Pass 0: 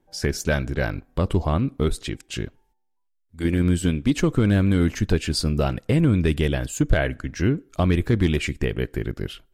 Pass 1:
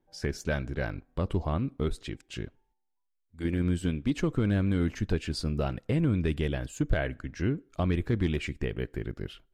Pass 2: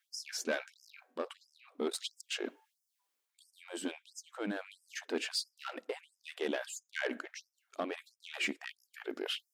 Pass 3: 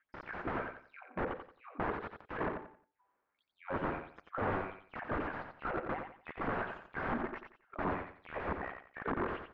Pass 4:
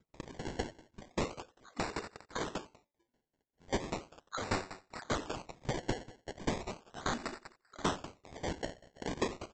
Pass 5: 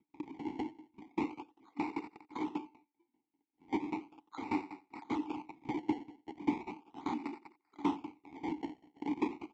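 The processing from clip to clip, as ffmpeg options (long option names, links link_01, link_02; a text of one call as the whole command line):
ffmpeg -i in.wav -af "highshelf=frequency=6900:gain=-10,volume=-7.5dB" out.wav
ffmpeg -i in.wav -af "areverse,acompressor=threshold=-38dB:ratio=4,areverse,asoftclip=type=tanh:threshold=-36dB,afftfilt=real='re*gte(b*sr/1024,210*pow(5000/210,0.5+0.5*sin(2*PI*1.5*pts/sr)))':imag='im*gte(b*sr/1024,210*pow(5000/210,0.5+0.5*sin(2*PI*1.5*pts/sr)))':win_size=1024:overlap=0.75,volume=12dB" out.wav
ffmpeg -i in.wav -filter_complex "[0:a]aeval=exprs='(mod(79.4*val(0)+1,2)-1)/79.4':channel_layout=same,lowpass=frequency=1600:width=0.5412,lowpass=frequency=1600:width=1.3066,asplit=2[link_01][link_02];[link_02]aecho=0:1:89|178|267|356:0.473|0.137|0.0398|0.0115[link_03];[link_01][link_03]amix=inputs=2:normalize=0,volume=12dB" out.wav
ffmpeg -i in.wav -af "aresample=16000,acrusher=samples=9:mix=1:aa=0.000001:lfo=1:lforange=9:lforate=0.37,aresample=44100,aeval=exprs='val(0)*pow(10,-20*if(lt(mod(5.1*n/s,1),2*abs(5.1)/1000),1-mod(5.1*n/s,1)/(2*abs(5.1)/1000),(mod(5.1*n/s,1)-2*abs(5.1)/1000)/(1-2*abs(5.1)/1000))/20)':channel_layout=same,volume=6dB" out.wav
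ffmpeg -i in.wav -filter_complex "[0:a]asplit=3[link_01][link_02][link_03];[link_01]bandpass=frequency=300:width_type=q:width=8,volume=0dB[link_04];[link_02]bandpass=frequency=870:width_type=q:width=8,volume=-6dB[link_05];[link_03]bandpass=frequency=2240:width_type=q:width=8,volume=-9dB[link_06];[link_04][link_05][link_06]amix=inputs=3:normalize=0,volume=11dB" out.wav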